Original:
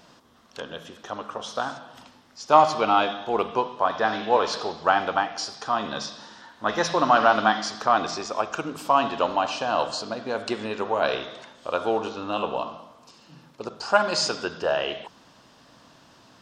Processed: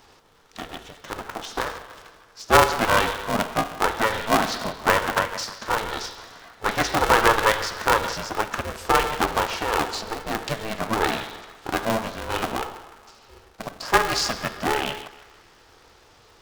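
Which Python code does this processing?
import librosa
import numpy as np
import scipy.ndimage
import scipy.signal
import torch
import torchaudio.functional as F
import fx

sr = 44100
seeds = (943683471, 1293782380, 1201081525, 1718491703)

y = fx.echo_banded(x, sr, ms=155, feedback_pct=64, hz=1400.0, wet_db=-13)
y = fx.dynamic_eq(y, sr, hz=1800.0, q=2.4, threshold_db=-40.0, ratio=4.0, max_db=4)
y = y * np.sign(np.sin(2.0 * np.pi * 220.0 * np.arange(len(y)) / sr))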